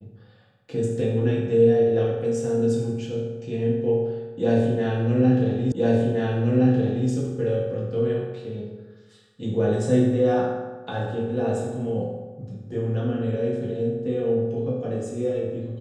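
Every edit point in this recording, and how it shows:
0:05.72: the same again, the last 1.37 s

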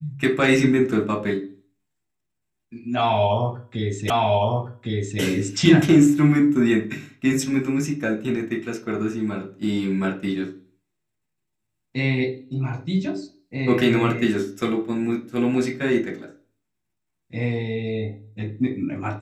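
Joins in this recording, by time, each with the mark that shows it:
0:04.10: the same again, the last 1.11 s

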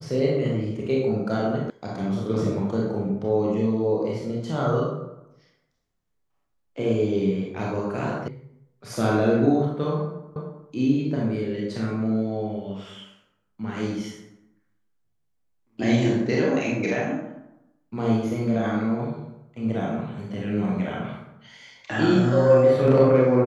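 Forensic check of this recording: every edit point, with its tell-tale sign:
0:01.70: cut off before it has died away
0:08.28: cut off before it has died away
0:10.36: the same again, the last 0.31 s

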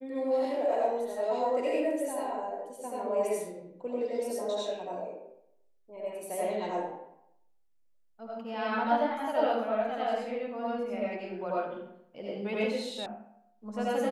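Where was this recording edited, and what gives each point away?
0:13.06: cut off before it has died away

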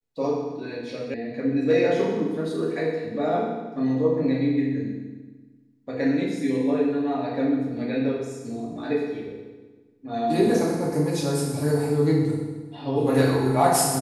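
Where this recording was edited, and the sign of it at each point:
0:01.14: cut off before it has died away

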